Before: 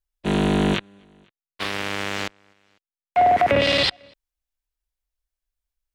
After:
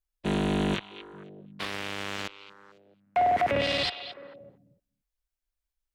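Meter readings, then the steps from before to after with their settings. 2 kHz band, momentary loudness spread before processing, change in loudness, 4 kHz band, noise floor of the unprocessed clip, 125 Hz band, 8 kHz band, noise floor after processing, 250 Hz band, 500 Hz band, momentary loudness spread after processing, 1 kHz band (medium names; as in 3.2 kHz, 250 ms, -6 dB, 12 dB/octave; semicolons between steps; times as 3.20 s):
-7.5 dB, 12 LU, -7.5 dB, -7.5 dB, under -85 dBFS, -7.0 dB, -7.0 dB, under -85 dBFS, -7.0 dB, -7.5 dB, 21 LU, -7.0 dB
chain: peak limiter -15 dBFS, peak gain reduction 7.5 dB; repeats whose band climbs or falls 220 ms, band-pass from 3 kHz, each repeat -1.4 oct, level -10 dB; trim -3 dB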